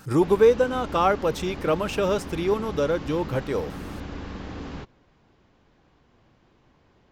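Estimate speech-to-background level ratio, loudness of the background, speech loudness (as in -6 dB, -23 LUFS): 13.5 dB, -37.0 LUFS, -23.5 LUFS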